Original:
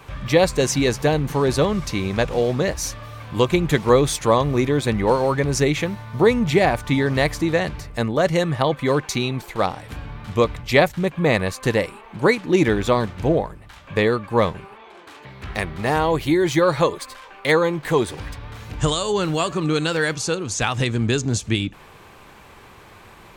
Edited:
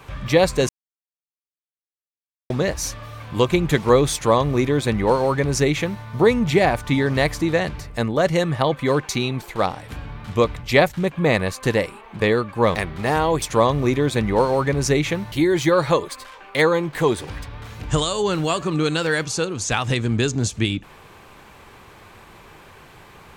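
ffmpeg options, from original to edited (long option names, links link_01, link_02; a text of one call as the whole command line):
ffmpeg -i in.wav -filter_complex "[0:a]asplit=7[link_01][link_02][link_03][link_04][link_05][link_06][link_07];[link_01]atrim=end=0.69,asetpts=PTS-STARTPTS,afade=type=out:start_time=0.686:duration=0.004:curve=hsin[link_08];[link_02]atrim=start=0.69:end=2.5,asetpts=PTS-STARTPTS,volume=0[link_09];[link_03]atrim=start=2.5:end=12.202,asetpts=PTS-STARTPTS,afade=type=in:duration=0.004:curve=hsin[link_10];[link_04]atrim=start=13.948:end=14.502[link_11];[link_05]atrim=start=15.548:end=16.222[link_12];[link_06]atrim=start=4.128:end=6.032[link_13];[link_07]atrim=start=16.218[link_14];[link_08][link_09][link_10]concat=n=3:v=0:a=1[link_15];[link_15][link_11]acrossfade=duration=0.004:curve1=hsin:curve2=hsin[link_16];[link_16][link_12]acrossfade=duration=0.004:curve1=hsin:curve2=hsin[link_17];[link_17][link_13]acrossfade=duration=0.004:curve1=hsin:curve2=hsin[link_18];[link_18][link_14]acrossfade=duration=0.004:curve1=hsin:curve2=hsin" out.wav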